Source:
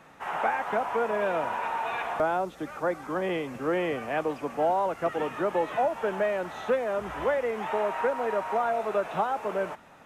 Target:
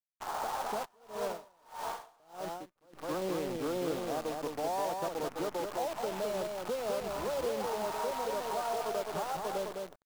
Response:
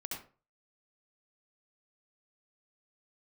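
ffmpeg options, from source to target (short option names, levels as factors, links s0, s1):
-filter_complex "[0:a]lowpass=f=1600:w=0.5412,lowpass=f=1600:w=1.3066,afwtdn=0.0251,alimiter=limit=0.0668:level=0:latency=1:release=170,acrusher=bits=7:dc=4:mix=0:aa=0.000001,aecho=1:1:207:0.631,asplit=3[s0][s1][s2];[s0]afade=t=out:st=0.84:d=0.02[s3];[s1]aeval=exprs='val(0)*pow(10,-31*(0.5-0.5*cos(2*PI*1.6*n/s))/20)':c=same,afade=t=in:st=0.84:d=0.02,afade=t=out:st=2.93:d=0.02[s4];[s2]afade=t=in:st=2.93:d=0.02[s5];[s3][s4][s5]amix=inputs=3:normalize=0,volume=0.631"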